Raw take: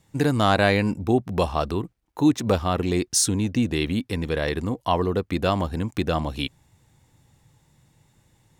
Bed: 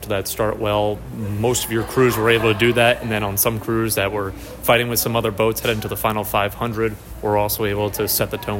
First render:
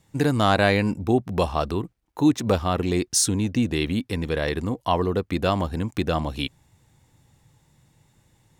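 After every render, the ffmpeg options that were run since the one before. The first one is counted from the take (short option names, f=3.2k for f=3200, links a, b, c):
-af anull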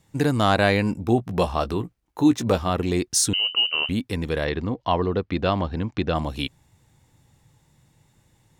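-filter_complex "[0:a]asettb=1/sr,asplit=3[a][b][c];[a]atrim=end=0.954[d];[b]atrim=start=0.95:end=2.7,asetpts=PTS-STARTPTS,afade=t=in:d=0.004:c=qsin,afade=t=out:st=1.746:d=0.004:c=qsin,asplit=2[e][f];[f]adelay=17,volume=-10dB[g];[e][g]amix=inputs=2:normalize=0,atrim=end_sample=77175[h];[c]atrim=start=2.696[i];[d][h]acrossfade=d=0.004:c1=hsin:c2=qsin[j];[j][i]acrossfade=d=0.004:c1=qsin:c2=hsin,asettb=1/sr,asplit=3[k][l][m];[k]atrim=end=3.334[n];[l]atrim=start=3.33:end=3.89,asetpts=PTS-STARTPTS,afade=t=in:d=0.004:c=qsin,afade=t=out:st=0.556:d=0.004:c=qsin,lowpass=f=2.6k:t=q:w=0.5098,lowpass=f=2.6k:t=q:w=0.6013,lowpass=f=2.6k:t=q:w=0.9,lowpass=f=2.6k:t=q:w=2.563,afreqshift=-3100[o];[m]atrim=start=3.886[p];[n][o]acrossfade=d=0.004:c1=hsin:c2=qsin[q];[q][p]acrossfade=d=0.004:c1=qsin:c2=hsin,asplit=3[r][s][t];[r]afade=t=out:st=4.44:d=0.02[u];[s]lowpass=f=4.9k:w=0.5412,lowpass=f=4.9k:w=1.3066,afade=t=in:st=4.44:d=0.02,afade=t=out:st=6.14:d=0.02[v];[t]afade=t=in:st=6.14:d=0.02[w];[u][v][w]amix=inputs=3:normalize=0"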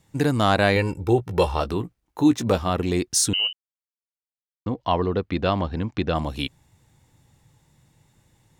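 -filter_complex "[0:a]asettb=1/sr,asplit=3[a][b][c];[a]atrim=end=0.764[d];[b]atrim=start=0.76:end=1.61,asetpts=PTS-STARTPTS,afade=t=in:d=0.004:c=qsin,afade=t=out:st=0.846:d=0.004:c=qsin,aecho=1:1:2.2:0.65,atrim=end_sample=37485[e];[c]atrim=start=1.606[f];[d][e]acrossfade=d=0.004:c1=hsin:c2=qsin[g];[g][f]acrossfade=d=0.004:c1=qsin:c2=hsin,asplit=3[h][i][j];[h]atrim=end=3.53,asetpts=PTS-STARTPTS,afade=t=out:st=3.526:d=0.004:c=hsin[k];[i]atrim=start=3.53:end=4.66,asetpts=PTS-STARTPTS,volume=0[l];[j]atrim=start=4.66,asetpts=PTS-STARTPTS,afade=t=in:d=0.004:c=hsin[m];[k][l][m]concat=n=3:v=0:a=1"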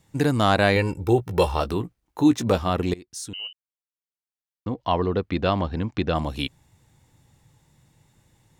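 -filter_complex "[0:a]asettb=1/sr,asplit=3[a][b][c];[a]atrim=end=1.014[d];[b]atrim=start=1.01:end=1.79,asetpts=PTS-STARTPTS,afade=t=in:d=0.004:c=qsin,afade=t=out:st=0.776:d=0.004:c=qsin,highshelf=f=12k:g=9[e];[c]atrim=start=1.786[f];[d][e]acrossfade=d=0.004:c1=hsin:c2=qsin[g];[g][f]acrossfade=d=0.004:c1=qsin:c2=hsin,asplit=2[h][i];[h]atrim=end=2.94,asetpts=PTS-STARTPTS,afade=t=out:st=2.936:d=0.004:c=hsin:silence=0.0749894[j];[i]atrim=start=2.94,asetpts=PTS-STARTPTS,afade=t=in:d=2.16:silence=0.0749894[k];[j][k]concat=n=2:v=0:a=1"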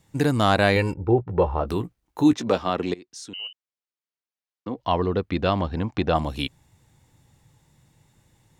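-filter_complex "[0:a]asettb=1/sr,asplit=3[a][b][c];[a]atrim=end=0.944[d];[b]atrim=start=0.94:end=1.68,asetpts=PTS-STARTPTS,afade=t=in:d=0.004:c=qsin,afade=t=out:st=0.736:d=0.004:c=qsin,lowpass=1.2k[e];[c]atrim=start=1.676[f];[d][e]acrossfade=d=0.004:c1=hsin:c2=qsin[g];[g][f]acrossfade=d=0.004:c1=qsin:c2=hsin,asettb=1/sr,asplit=3[h][i][j];[h]atrim=end=2.334[k];[i]atrim=start=2.33:end=4.76,asetpts=PTS-STARTPTS,afade=t=in:d=0.004:c=qsin,afade=t=out:st=2.426:d=0.004:c=qsin,acrossover=split=180 6800:gain=0.2 1 0.141[l][m][n];[l][m][n]amix=inputs=3:normalize=0[o];[j]atrim=start=4.756[p];[k][o]acrossfade=d=0.004:c1=hsin:c2=qsin[q];[q][p]acrossfade=d=0.004:c1=qsin:c2=hsin,asettb=1/sr,asplit=3[r][s][t];[r]atrim=end=5.774[u];[s]atrim=start=5.77:end=6.17,asetpts=PTS-STARTPTS,afade=t=in:d=0.004:c=qsin,afade=t=out:st=0.396:d=0.004:c=qsin,equalizer=f=800:w=1.5:g=7[v];[t]atrim=start=6.166[w];[u][v]acrossfade=d=0.004:c1=hsin:c2=qsin[x];[x][w]acrossfade=d=0.004:c1=qsin:c2=hsin"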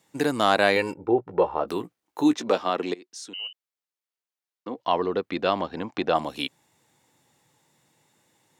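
-af "highpass=290"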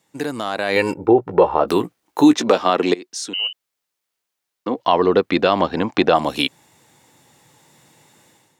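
-af "alimiter=limit=-14dB:level=0:latency=1:release=141,dynaudnorm=f=460:g=3:m=13dB"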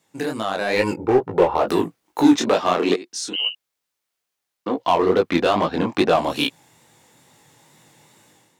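-filter_complex "[0:a]asplit=2[a][b];[b]aeval=exprs='0.188*(abs(mod(val(0)/0.188+3,4)-2)-1)':c=same,volume=-8.5dB[c];[a][c]amix=inputs=2:normalize=0,flanger=delay=18:depth=7.4:speed=2.3"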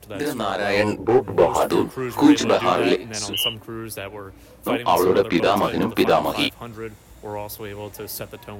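-filter_complex "[1:a]volume=-12.5dB[a];[0:a][a]amix=inputs=2:normalize=0"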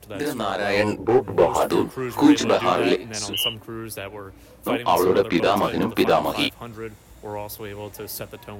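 -af "volume=-1dB"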